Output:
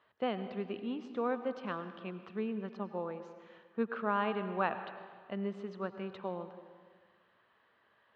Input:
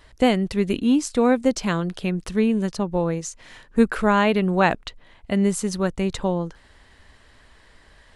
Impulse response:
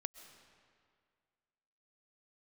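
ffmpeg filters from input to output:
-filter_complex "[0:a]highpass=frequency=140:width=0.5412,highpass=frequency=140:width=1.3066,equalizer=frequency=160:width_type=q:width=4:gain=-10,equalizer=frequency=280:width_type=q:width=4:gain=-9,equalizer=frequency=1200:width_type=q:width=4:gain=6,equalizer=frequency=2100:width_type=q:width=4:gain=-6,lowpass=frequency=3100:width=0.5412,lowpass=frequency=3100:width=1.3066[link_01];[1:a]atrim=start_sample=2205,asetrate=57330,aresample=44100[link_02];[link_01][link_02]afir=irnorm=-1:irlink=0,volume=-8.5dB"

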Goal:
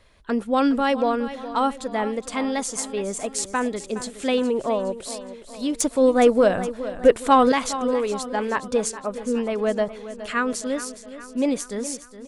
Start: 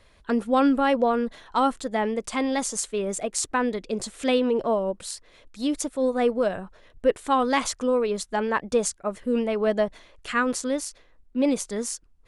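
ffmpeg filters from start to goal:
ffmpeg -i in.wav -filter_complex "[0:a]asettb=1/sr,asplit=3[link_01][link_02][link_03];[link_01]atrim=end=0.584[link_04];[link_02]atrim=start=0.58:end=1.17,asetpts=PTS-STARTPTS,afade=type=in:duration=0.004:curve=qsin,afade=type=out:start_time=0.586:duration=0.004:curve=qsin,equalizer=frequency=5400:width=0.94:gain=7[link_05];[link_03]atrim=start=1.166[link_06];[link_04][link_05]acrossfade=duration=0.004:curve1=hsin:curve2=qsin[link_07];[link_07][link_06]acrossfade=duration=0.004:curve1=qsin:curve2=hsin,asettb=1/sr,asplit=3[link_08][link_09][link_10];[link_08]atrim=end=5.804[link_11];[link_09]atrim=start=5.8:end=7.52,asetpts=PTS-STARTPTS,afade=type=in:duration=0.004:curve=qsin,afade=type=out:start_time=1.716:duration=0.004:curve=qsin,acontrast=81[link_12];[link_10]atrim=start=7.516[link_13];[link_11][link_12]acrossfade=duration=0.004:curve1=hsin:curve2=qsin[link_14];[link_14][link_13]acrossfade=duration=0.004:curve1=qsin:curve2=hsin,aecho=1:1:416|832|1248|1664|2080:0.211|0.112|0.0594|0.0315|0.0167" out.wav

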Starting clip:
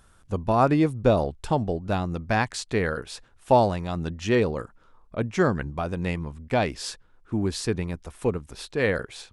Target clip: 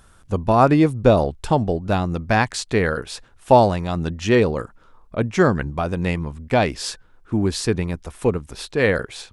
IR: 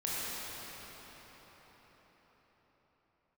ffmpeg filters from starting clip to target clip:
-filter_complex "[0:a]asettb=1/sr,asplit=3[link_01][link_02][link_03];[link_01]atrim=end=6.884[link_04];[link_02]atrim=start=6.88:end=7.41,asetpts=PTS-STARTPTS,afade=type=in:duration=0.004:curve=qsin,afade=type=out:start_time=0.526:duration=0.004:curve=qsin,bandreject=frequency=381.8:width_type=h:width=4,bandreject=frequency=763.6:width_type=h:width=4,bandreject=frequency=1145.4:width_type=h:width=4,bandreject=frequency=1527.2:width_type=h:width=4[link_05];[link_03]atrim=start=7.406[link_06];[link_04][link_05]acrossfade=duration=0.004:curve1=hsin:curve2=qsin[link_07];[link_07][link_06]acrossfade=duration=0.004:curve1=qsin:curve2=hsin,volume=5.5dB"

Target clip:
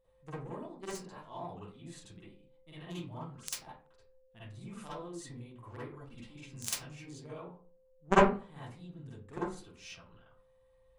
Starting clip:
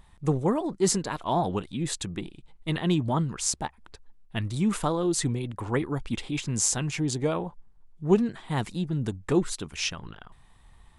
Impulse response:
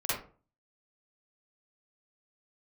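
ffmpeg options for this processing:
-filter_complex "[0:a]aeval=exprs='val(0)+0.00562*sin(2*PI*520*n/s)':channel_layout=same,aeval=exprs='0.422*(cos(1*acos(clip(val(0)/0.422,-1,1)))-cos(1*PI/2))+0.211*(cos(3*acos(clip(val(0)/0.422,-1,1)))-cos(3*PI/2))+0.0473*(cos(5*acos(clip(val(0)/0.422,-1,1)))-cos(5*PI/2))':channel_layout=same[link_01];[1:a]atrim=start_sample=2205[link_02];[link_01][link_02]afir=irnorm=-1:irlink=0"

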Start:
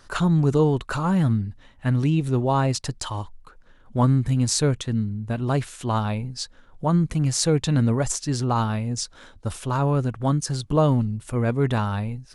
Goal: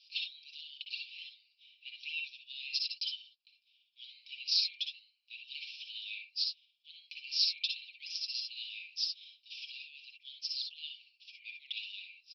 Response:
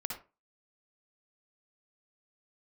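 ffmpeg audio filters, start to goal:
-filter_complex "[0:a]asuperpass=centerf=3600:order=20:qfactor=1.2,aecho=1:1:5.5:0.65[link_01];[1:a]atrim=start_sample=2205,atrim=end_sample=3528[link_02];[link_01][link_02]afir=irnorm=-1:irlink=0"

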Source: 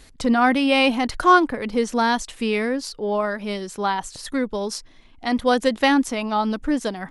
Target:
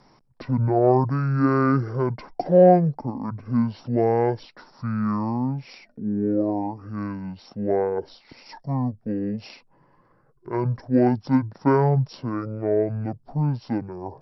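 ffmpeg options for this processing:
ffmpeg -i in.wav -filter_complex "[0:a]acrossover=split=240 2400:gain=0.158 1 0.126[link_01][link_02][link_03];[link_01][link_02][link_03]amix=inputs=3:normalize=0,aexciter=amount=3.1:drive=7.6:freq=9100,asetrate=22050,aresample=44100" out.wav

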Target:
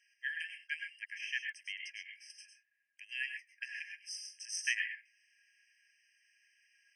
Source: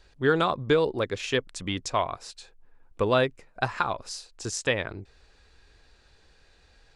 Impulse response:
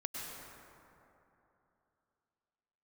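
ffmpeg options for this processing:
-filter_complex "[0:a]asettb=1/sr,asplit=3[link_01][link_02][link_03];[link_01]atrim=end=0.794[link_04];[link_02]atrim=start=0.79:end=2.3,asetpts=PTS-STARTPTS,afade=type=in:duration=0.004:curve=qsin,afade=type=out:start_time=1.506:duration=0.004:curve=qsin,acrossover=split=3200[link_05][link_06];[link_06]acompressor=threshold=-47dB:ratio=4:attack=1:release=60[link_07];[link_05][link_07]amix=inputs=2:normalize=0[link_08];[link_03]atrim=start=2.296[link_09];[link_04][link_08]acrossfade=duration=0.004:curve1=hsin:curve2=qsin[link_10];[link_10][link_09]acrossfade=duration=0.004:curve1=qsin:curve2=hsin[link_11];[1:a]atrim=start_sample=2205,atrim=end_sample=6174[link_12];[link_11][link_12]afir=irnorm=-1:irlink=0,afftfilt=real='re*eq(mod(floor(b*sr/1024/1600),2),1)':imag='im*eq(mod(floor(b*sr/1024/1600),2),1)':win_size=1024:overlap=0.75,volume=-1dB"

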